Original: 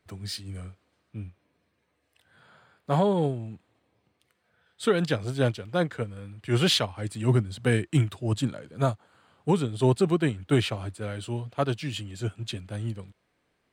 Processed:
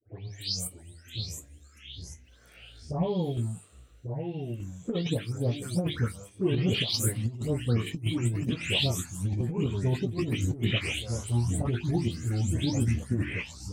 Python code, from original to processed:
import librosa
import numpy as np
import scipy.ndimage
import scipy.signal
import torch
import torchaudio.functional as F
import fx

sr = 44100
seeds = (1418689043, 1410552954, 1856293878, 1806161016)

y = fx.spec_delay(x, sr, highs='late', ms=324)
y = scipy.signal.sosfilt(scipy.signal.butter(2, 100.0, 'highpass', fs=sr, output='sos'), y)
y = fx.low_shelf(y, sr, hz=130.0, db=2.5)
y = fx.hum_notches(y, sr, base_hz=50, count=9)
y = fx.env_phaser(y, sr, low_hz=170.0, high_hz=1500.0, full_db=-21.5)
y = fx.chopper(y, sr, hz=0.89, depth_pct=60, duty_pct=60)
y = fx.echo_pitch(y, sr, ms=592, semitones=-3, count=3, db_per_echo=-6.0)
y = fx.bass_treble(y, sr, bass_db=4, treble_db=7)
y = fx.over_compress(y, sr, threshold_db=-26.0, ratio=-0.5)
y = fx.doubler(y, sr, ms=17.0, db=-10)